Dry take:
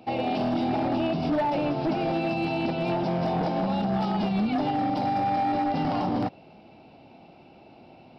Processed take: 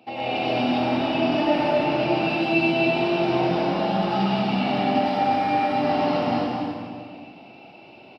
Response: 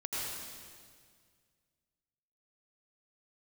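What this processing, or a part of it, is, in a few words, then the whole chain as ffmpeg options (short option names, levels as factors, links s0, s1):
stadium PA: -filter_complex "[0:a]highpass=f=220:p=1,equalizer=f=2700:t=o:w=0.57:g=6,aecho=1:1:198.3|250.7:0.355|0.501[s0];[1:a]atrim=start_sample=2205[s1];[s0][s1]afir=irnorm=-1:irlink=0"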